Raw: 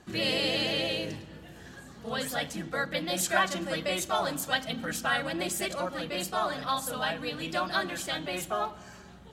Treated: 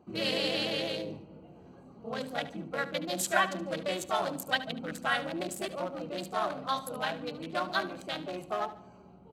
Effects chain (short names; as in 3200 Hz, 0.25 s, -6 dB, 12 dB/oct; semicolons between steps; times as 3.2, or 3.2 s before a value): Wiener smoothing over 25 samples; HPF 200 Hz 6 dB/oct; feedback echo 73 ms, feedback 38%, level -15 dB